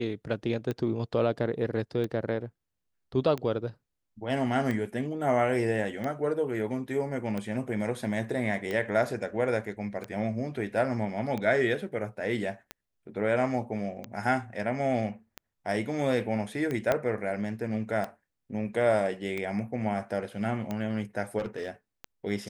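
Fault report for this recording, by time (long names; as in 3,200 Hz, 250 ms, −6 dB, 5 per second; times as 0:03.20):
scratch tick 45 rpm −20 dBFS
0:16.92: click −12 dBFS
0:21.38–0:21.70: clipping −27.5 dBFS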